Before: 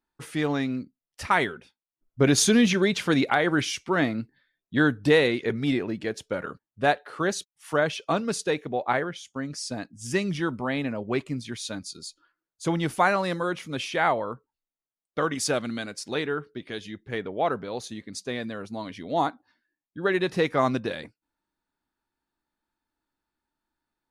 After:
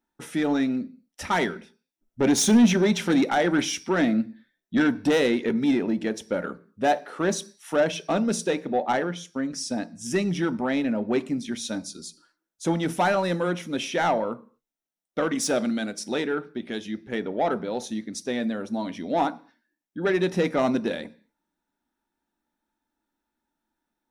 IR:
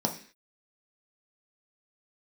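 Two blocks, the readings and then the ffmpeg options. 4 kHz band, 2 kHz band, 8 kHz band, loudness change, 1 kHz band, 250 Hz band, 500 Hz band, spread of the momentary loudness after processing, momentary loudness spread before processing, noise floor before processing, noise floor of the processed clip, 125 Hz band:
−1.0 dB, −2.5 dB, +1.0 dB, +1.0 dB, 0.0 dB, +3.5 dB, +1.0 dB, 11 LU, 14 LU, below −85 dBFS, −85 dBFS, −1.5 dB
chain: -filter_complex "[0:a]asoftclip=type=tanh:threshold=-19.5dB,asplit=2[link_01][link_02];[1:a]atrim=start_sample=2205,highshelf=frequency=9500:gain=9[link_03];[link_02][link_03]afir=irnorm=-1:irlink=0,volume=-14.5dB[link_04];[link_01][link_04]amix=inputs=2:normalize=0"

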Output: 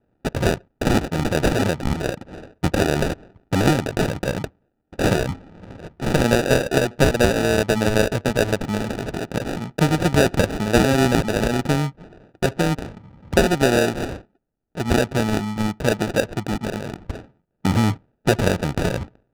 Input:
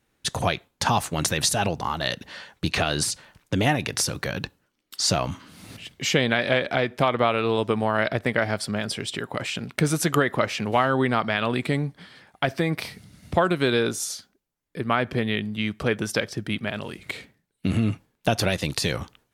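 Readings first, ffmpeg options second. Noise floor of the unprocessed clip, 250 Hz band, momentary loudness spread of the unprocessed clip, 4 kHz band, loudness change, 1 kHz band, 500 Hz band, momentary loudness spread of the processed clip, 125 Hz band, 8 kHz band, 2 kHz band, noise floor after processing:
−74 dBFS, +6.0 dB, 12 LU, −1.0 dB, +3.5 dB, +0.5 dB, +5.0 dB, 12 LU, +5.5 dB, −2.0 dB, +1.5 dB, −71 dBFS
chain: -af "acrusher=samples=41:mix=1:aa=0.000001,adynamicsmooth=sensitivity=8:basefreq=1900,volume=4.5dB"

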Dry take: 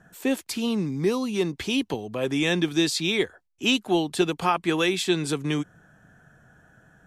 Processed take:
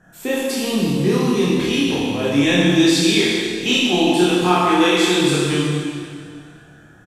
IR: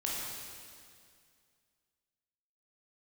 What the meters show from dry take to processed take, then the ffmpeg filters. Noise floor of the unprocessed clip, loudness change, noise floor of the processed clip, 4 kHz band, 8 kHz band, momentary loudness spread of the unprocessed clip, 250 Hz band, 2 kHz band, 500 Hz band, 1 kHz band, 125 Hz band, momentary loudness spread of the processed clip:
−66 dBFS, +8.5 dB, −46 dBFS, +8.5 dB, +8.5 dB, 5 LU, +9.0 dB, +8.0 dB, +7.5 dB, +8.5 dB, +9.5 dB, 9 LU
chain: -filter_complex "[0:a]asplit=2[link_01][link_02];[link_02]adelay=28,volume=-2dB[link_03];[link_01][link_03]amix=inputs=2:normalize=0[link_04];[1:a]atrim=start_sample=2205[link_05];[link_04][link_05]afir=irnorm=-1:irlink=0,volume=1.5dB"

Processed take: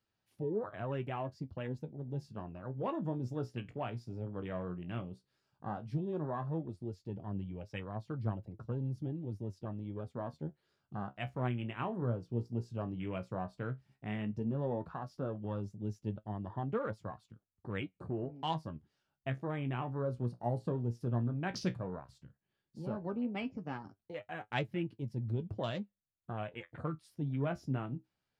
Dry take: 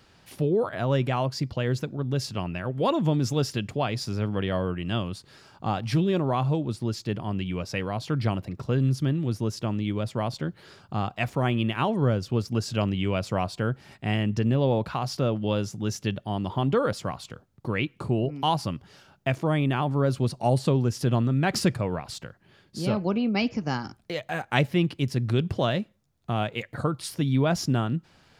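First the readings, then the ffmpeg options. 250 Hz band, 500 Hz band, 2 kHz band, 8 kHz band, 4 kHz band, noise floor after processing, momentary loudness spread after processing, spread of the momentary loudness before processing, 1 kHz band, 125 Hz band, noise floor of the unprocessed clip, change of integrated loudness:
−12.0 dB, −12.0 dB, −13.5 dB, below −20 dB, −17.5 dB, below −85 dBFS, 8 LU, 8 LU, −12.0 dB, −12.0 dB, −60 dBFS, −12.5 dB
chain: -af "afwtdn=0.0178,flanger=delay=9.1:depth=7.9:regen=50:speed=0.12:shape=sinusoidal,volume=-8dB"

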